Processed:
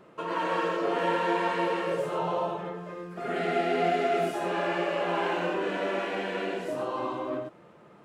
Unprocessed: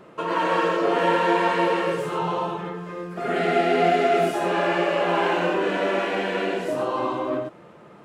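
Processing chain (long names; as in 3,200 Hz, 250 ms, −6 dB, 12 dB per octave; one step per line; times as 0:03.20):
0:01.91–0:02.94: parametric band 610 Hz +12 dB 0.42 octaves
level −6.5 dB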